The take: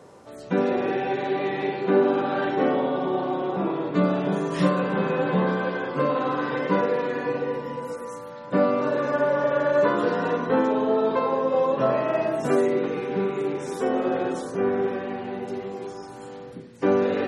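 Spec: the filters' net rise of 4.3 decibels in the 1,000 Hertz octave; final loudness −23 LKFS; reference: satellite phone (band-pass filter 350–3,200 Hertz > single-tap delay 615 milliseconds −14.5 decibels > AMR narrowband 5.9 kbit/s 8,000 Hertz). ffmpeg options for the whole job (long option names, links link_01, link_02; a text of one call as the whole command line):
ffmpeg -i in.wav -af "highpass=350,lowpass=3200,equalizer=frequency=1000:width_type=o:gain=5.5,aecho=1:1:615:0.188,volume=2.5dB" -ar 8000 -c:a libopencore_amrnb -b:a 5900 out.amr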